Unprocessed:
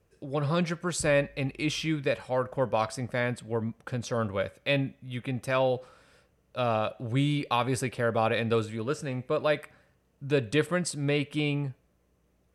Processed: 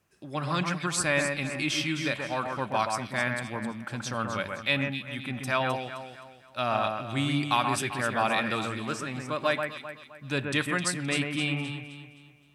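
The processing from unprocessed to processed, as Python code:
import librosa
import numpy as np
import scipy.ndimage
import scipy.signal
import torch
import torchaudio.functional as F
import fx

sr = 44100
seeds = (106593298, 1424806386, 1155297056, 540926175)

p1 = fx.highpass(x, sr, hz=310.0, slope=6)
p2 = fx.peak_eq(p1, sr, hz=480.0, db=-14.5, octaves=0.56)
p3 = p2 + fx.echo_alternate(p2, sr, ms=130, hz=2400.0, feedback_pct=61, wet_db=-4, dry=0)
y = p3 * 10.0 ** (3.5 / 20.0)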